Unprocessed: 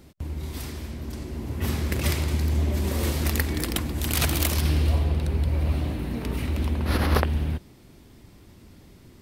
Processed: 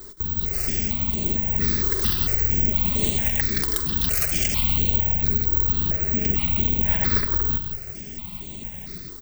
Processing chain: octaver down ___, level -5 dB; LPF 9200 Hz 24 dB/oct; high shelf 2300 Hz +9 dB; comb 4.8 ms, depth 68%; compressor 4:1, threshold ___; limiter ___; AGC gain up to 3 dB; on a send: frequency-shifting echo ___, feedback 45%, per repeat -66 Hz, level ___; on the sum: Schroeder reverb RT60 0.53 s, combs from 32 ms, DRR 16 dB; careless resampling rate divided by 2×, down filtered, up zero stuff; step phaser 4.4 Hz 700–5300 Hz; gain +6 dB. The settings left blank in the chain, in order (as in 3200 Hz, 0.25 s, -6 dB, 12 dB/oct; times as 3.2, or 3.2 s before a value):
1 oct, -33 dBFS, -18 dBFS, 0.169 s, -8 dB